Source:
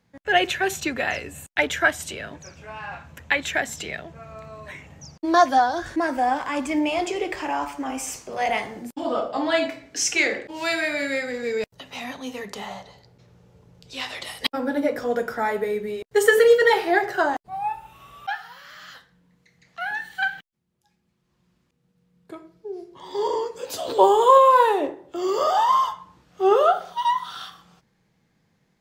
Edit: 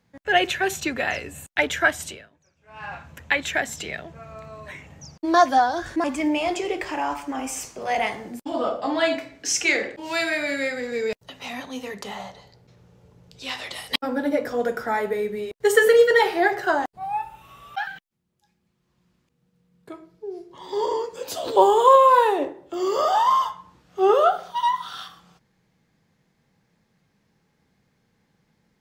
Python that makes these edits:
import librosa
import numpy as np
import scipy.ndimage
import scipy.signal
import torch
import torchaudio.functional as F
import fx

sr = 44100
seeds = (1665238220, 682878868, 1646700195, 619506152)

y = fx.edit(x, sr, fx.fade_down_up(start_s=2.07, length_s=0.77, db=-22.5, fade_s=0.26, curve='qua'),
    fx.cut(start_s=6.04, length_s=0.51),
    fx.cut(start_s=18.38, length_s=1.91), tone=tone)